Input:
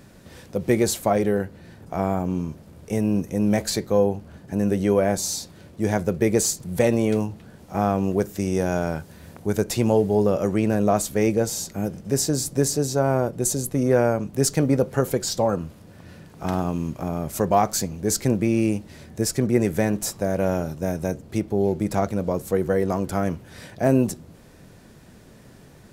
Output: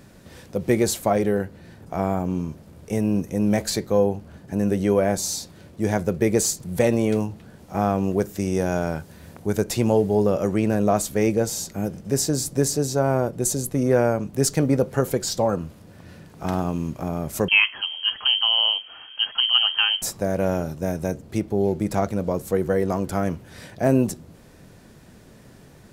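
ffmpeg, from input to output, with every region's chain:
-filter_complex "[0:a]asettb=1/sr,asplit=3[a][b][c];[a]atrim=end=17.484[d];[b]atrim=start=17.48:end=20.02,asetpts=PTS-STARTPTS,afade=t=in:d=0.004:c=qsin,afade=t=out:st=2.536:d=0.004:c=qsin,highshelf=f=2k:g=8.5,lowpass=f=2.8k:t=q:w=0.5098,lowpass=f=2.8k:t=q:w=0.6013,lowpass=f=2.8k:t=q:w=0.9,lowpass=f=2.8k:t=q:w=2.563,afreqshift=-3300[e];[c]atrim=start=20.016[f];[d][e]acrossfade=d=0.004:c1=hsin:c2=qsin[g];[g][f]acrossfade=d=0.004:c1=qsin:c2=hsin"

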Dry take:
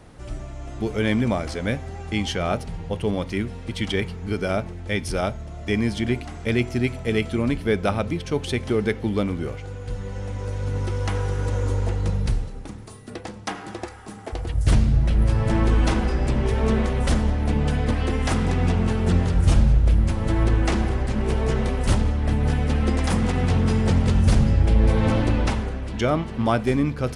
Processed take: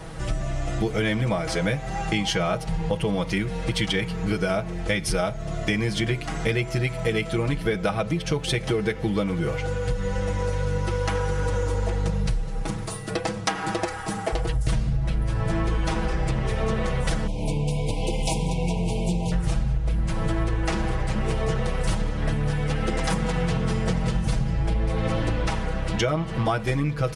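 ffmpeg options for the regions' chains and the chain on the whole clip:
-filter_complex "[0:a]asettb=1/sr,asplit=3[a][b][c];[a]atrim=end=17.274[d];[b]atrim=start=17.27:end=19.32,asetpts=PTS-STARTPTS,afade=t=in:d=0.004:c=qsin,afade=t=out:st=2.046:d=0.004:c=qsin,highshelf=f=8.7k:g=11.5,flanger=delay=5.6:depth=2.3:regen=-61:speed=1.1:shape=triangular,asuperstop=centerf=1500:order=20:qfactor=1.3[e];[c]atrim=start=19.316[f];[d][e]acrossfade=d=0.004:c1=hsin:c2=qsin[g];[g][f]acrossfade=d=0.004:c1=qsin:c2=hsin,equalizer=f=290:t=o:w=0.62:g=-6.5,aecho=1:1:6.2:0.88,acompressor=threshold=-30dB:ratio=6,volume=8.5dB"

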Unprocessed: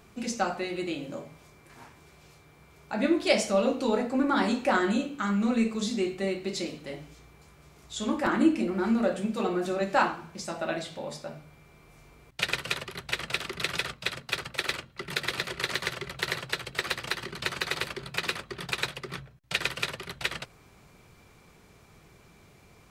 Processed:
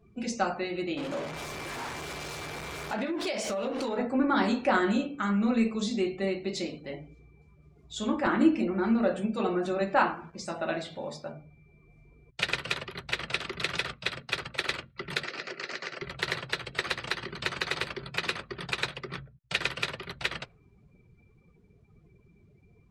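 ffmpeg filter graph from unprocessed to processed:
-filter_complex "[0:a]asettb=1/sr,asplit=3[a][b][c];[a]atrim=end=0.974[d];[b]atrim=start=0.97:end=3.98,asetpts=PTS-STARTPTS,afade=t=in:d=0.004:c=qsin,afade=t=out:st=3.006:d=0.004:c=qsin,aeval=exprs='val(0)+0.5*0.0299*sgn(val(0))':c=same,bass=f=250:g=-7,treble=f=4k:g=0,acompressor=threshold=-27dB:ratio=16:attack=3.2:release=140:knee=1:detection=peak[e];[c]atrim=start=3.976[f];[d][e]acrossfade=d=0.004:c1=hsin:c2=qsin[g];[g][f]acrossfade=d=0.004:c1=qsin:c2=hsin,asettb=1/sr,asplit=3[h][i][j];[h]atrim=end=9.944[k];[i]atrim=start=9.94:end=11.32,asetpts=PTS-STARTPTS,afade=t=in:d=0.004:c=qsin,afade=t=out:st=1.376:d=0.004:c=qsin,bandreject=f=48.48:t=h:w=4,bandreject=f=96.96:t=h:w=4,bandreject=f=145.44:t=h:w=4,bandreject=f=193.92:t=h:w=4,acrusher=bits=7:mix=0:aa=0.5,adynamicequalizer=threshold=0.0126:dfrequency=3400:dqfactor=0.7:tfrequency=3400:tqfactor=0.7:attack=5:release=100:ratio=0.375:range=2:mode=cutabove:tftype=highshelf[l];[j]atrim=start=11.316[m];[k][l]acrossfade=d=0.004:c1=hsin:c2=qsin[n];[n][m]acrossfade=d=0.004:c1=qsin:c2=hsin,asettb=1/sr,asplit=3[o][p][q];[o]atrim=end=15.244[r];[p]atrim=start=15.24:end=16.02,asetpts=PTS-STARTPTS,afade=t=in:d=0.004:c=qsin,afade=t=out:st=0.776:d=0.004:c=qsin,acompressor=threshold=-30dB:ratio=4:attack=3.2:release=140:knee=1:detection=peak,highpass=f=180:w=0.5412,highpass=f=180:w=1.3066,equalizer=f=190:t=q:w=4:g=-8,equalizer=f=1k:t=q:w=4:g=-6,equalizer=f=3.5k:t=q:w=4:g=-8,equalizer=f=5.1k:t=q:w=4:g=3,lowpass=f=8k:w=0.5412,lowpass=f=8k:w=1.3066[s];[q]atrim=start=16.016[t];[r][s]acrossfade=d=0.004:c1=hsin:c2=qsin[u];[u][t]acrossfade=d=0.004:c1=qsin:c2=hsin,afftdn=nr=22:nf=-50,highshelf=f=11k:g=-12"

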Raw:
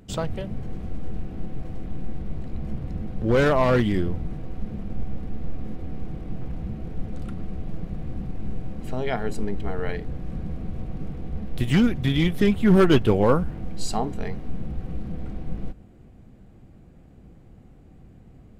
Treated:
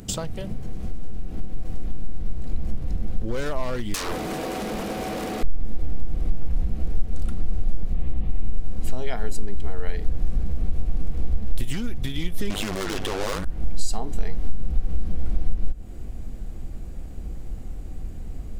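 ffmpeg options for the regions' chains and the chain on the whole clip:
-filter_complex "[0:a]asettb=1/sr,asplit=3[a][b][c];[a]atrim=end=3.944[d];[b]atrim=start=3.94:end=5.43,asetpts=PTS-STARTPTS,afade=t=in:d=0.004:c=qsin,afade=t=out:st=1.486:d=0.004:c=qsin,highpass=430,aeval=exprs='0.0891*sin(PI/2*7.94*val(0)/0.0891)':c=same[e];[c]atrim=start=5.426[f];[d][e]acrossfade=d=0.004:c1=hsin:c2=qsin[g];[g][f]acrossfade=d=0.004:c1=qsin:c2=hsin,asettb=1/sr,asplit=3[h][i][j];[h]atrim=end=7.944[k];[i]atrim=start=7.94:end=8.57,asetpts=PTS-STARTPTS,afade=t=in:d=0.004:c=qsin,afade=t=out:st=0.626:d=0.004:c=qsin,asuperstop=centerf=1500:order=8:qfactor=5.5,highshelf=f=4.1k:t=q:w=1.5:g=-9[l];[j]atrim=start=8.566[m];[k][l]acrossfade=d=0.004:c1=hsin:c2=qsin[n];[n][m]acrossfade=d=0.004:c1=qsin:c2=hsin,asettb=1/sr,asplit=3[o][p][q];[o]atrim=end=12.504[r];[p]atrim=start=12.5:end=13.45,asetpts=PTS-STARTPTS,afade=t=in:d=0.004:c=qsin,afade=t=out:st=0.946:d=0.004:c=qsin,acrossover=split=2700[s][t];[t]acompressor=threshold=-40dB:ratio=4:attack=1:release=60[u];[s][u]amix=inputs=2:normalize=0,asplit=2[v][w];[w]highpass=f=720:p=1,volume=37dB,asoftclip=type=tanh:threshold=-7dB[x];[v][x]amix=inputs=2:normalize=0,lowpass=f=4.4k:p=1,volume=-6dB,tremolo=f=100:d=0.857[y];[q]atrim=start=13.446[z];[r][y]acrossfade=d=0.004:c1=hsin:c2=qsin[aa];[aa][z]acrossfade=d=0.004:c1=qsin:c2=hsin,bass=f=250:g=1,treble=f=4k:g=11,acompressor=threshold=-34dB:ratio=10,asubboost=boost=6:cutoff=50,volume=8dB"

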